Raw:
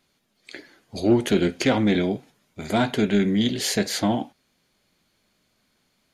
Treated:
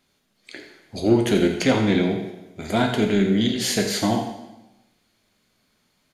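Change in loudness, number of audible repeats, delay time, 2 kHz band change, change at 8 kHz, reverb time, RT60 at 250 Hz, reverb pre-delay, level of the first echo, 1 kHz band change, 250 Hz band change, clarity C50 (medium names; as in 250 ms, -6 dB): +1.5 dB, 1, 85 ms, +1.5 dB, +1.5 dB, 1.0 s, 1.0 s, 6 ms, -11.0 dB, +1.5 dB, +1.0 dB, 6.0 dB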